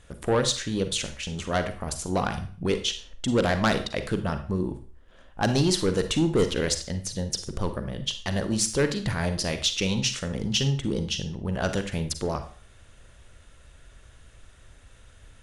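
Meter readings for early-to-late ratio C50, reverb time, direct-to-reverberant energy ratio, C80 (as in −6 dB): 10.5 dB, 0.45 s, 8.5 dB, 15.5 dB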